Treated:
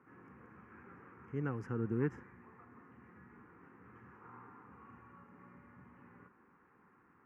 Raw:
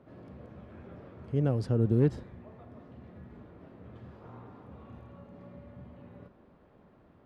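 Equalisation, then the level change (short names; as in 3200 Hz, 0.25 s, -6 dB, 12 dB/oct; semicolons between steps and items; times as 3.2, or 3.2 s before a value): running mean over 10 samples; HPF 1100 Hz 6 dB/oct; fixed phaser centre 1500 Hz, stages 4; +7.0 dB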